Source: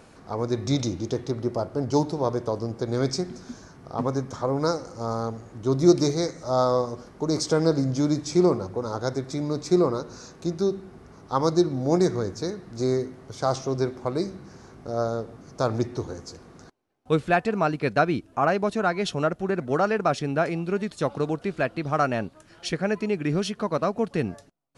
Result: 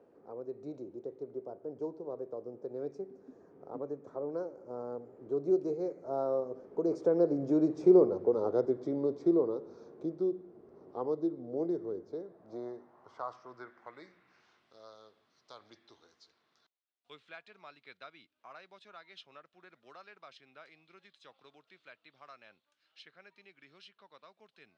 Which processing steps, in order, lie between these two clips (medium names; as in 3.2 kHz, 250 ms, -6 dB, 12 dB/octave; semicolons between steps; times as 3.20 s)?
Doppler pass-by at 8.11 s, 21 m/s, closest 12 m; band-pass sweep 430 Hz -> 3.7 kHz, 11.99–14.82 s; three bands compressed up and down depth 40%; trim +7 dB